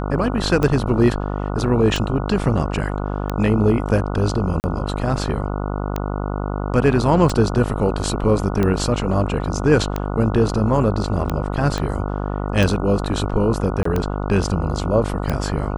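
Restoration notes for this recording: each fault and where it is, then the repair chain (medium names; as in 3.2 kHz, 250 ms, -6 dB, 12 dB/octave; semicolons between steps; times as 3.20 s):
buzz 50 Hz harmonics 29 -24 dBFS
tick 45 rpm -9 dBFS
4.60–4.64 s: dropout 39 ms
11.78 s: pop -10 dBFS
13.83–13.85 s: dropout 24 ms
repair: de-click; de-hum 50 Hz, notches 29; interpolate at 4.60 s, 39 ms; interpolate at 13.83 s, 24 ms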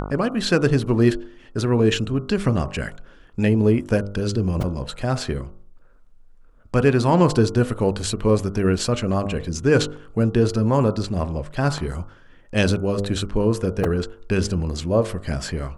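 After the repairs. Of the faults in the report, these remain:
11.78 s: pop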